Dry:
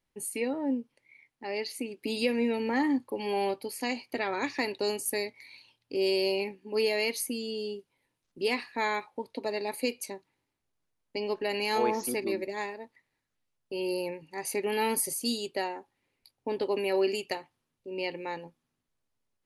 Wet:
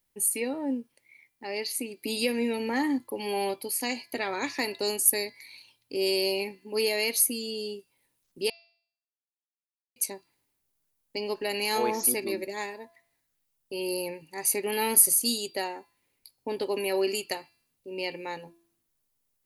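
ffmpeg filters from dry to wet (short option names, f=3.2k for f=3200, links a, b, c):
-filter_complex "[0:a]asplit=3[a][b][c];[a]atrim=end=8.5,asetpts=PTS-STARTPTS,afade=t=out:st=8.496:d=0.004:c=hsin[d];[b]atrim=start=8.5:end=9.96,asetpts=PTS-STARTPTS,volume=0[e];[c]atrim=start=9.96,asetpts=PTS-STARTPTS,afade=t=in:d=0.004:c=hsin[f];[d][e][f]concat=n=3:v=0:a=1,aemphasis=mode=production:type=50fm,bandreject=f=338.1:t=h:w=4,bandreject=f=676.2:t=h:w=4,bandreject=f=1.0143k:t=h:w=4,bandreject=f=1.3524k:t=h:w=4,bandreject=f=1.6905k:t=h:w=4,bandreject=f=2.0286k:t=h:w=4,bandreject=f=2.3667k:t=h:w=4,bandreject=f=2.7048k:t=h:w=4,bandreject=f=3.0429k:t=h:w=4,bandreject=f=3.381k:t=h:w=4,bandreject=f=3.7191k:t=h:w=4,bandreject=f=4.0572k:t=h:w=4,bandreject=f=4.3953k:t=h:w=4,bandreject=f=4.7334k:t=h:w=4,bandreject=f=5.0715k:t=h:w=4"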